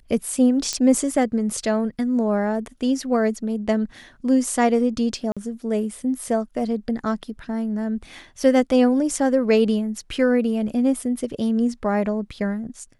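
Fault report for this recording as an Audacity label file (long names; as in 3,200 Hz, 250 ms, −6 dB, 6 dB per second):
0.730000	0.730000	click −10 dBFS
5.320000	5.370000	drop-out 46 ms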